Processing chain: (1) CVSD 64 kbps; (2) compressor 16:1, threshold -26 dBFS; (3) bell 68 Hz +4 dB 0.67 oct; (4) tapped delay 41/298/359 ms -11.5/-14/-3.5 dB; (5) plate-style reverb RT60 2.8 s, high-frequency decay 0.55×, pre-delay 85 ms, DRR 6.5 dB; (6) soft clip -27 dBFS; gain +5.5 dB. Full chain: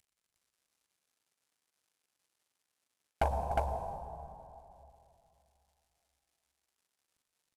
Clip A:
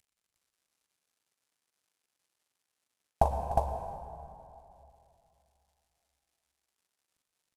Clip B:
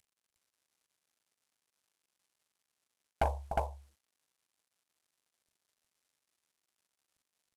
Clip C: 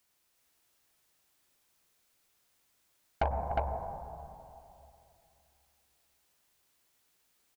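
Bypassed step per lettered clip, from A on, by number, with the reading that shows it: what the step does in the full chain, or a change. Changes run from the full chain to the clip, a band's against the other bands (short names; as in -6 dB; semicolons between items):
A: 6, distortion -7 dB; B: 5, momentary loudness spread change -13 LU; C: 1, momentary loudness spread change +2 LU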